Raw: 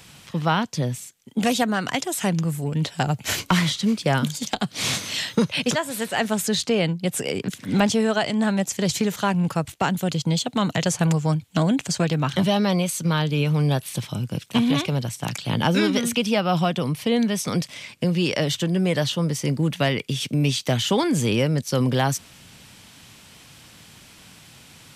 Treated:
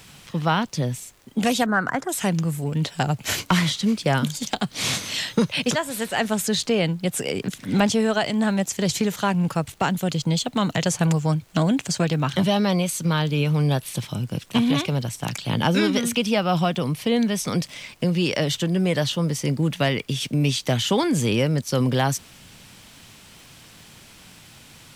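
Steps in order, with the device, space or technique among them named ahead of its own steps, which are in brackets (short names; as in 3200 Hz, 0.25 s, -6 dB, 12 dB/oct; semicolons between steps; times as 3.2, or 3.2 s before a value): vinyl LP (crackle 77/s -41 dBFS; pink noise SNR 35 dB); 1.66–2.09 resonant high shelf 2100 Hz -11 dB, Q 3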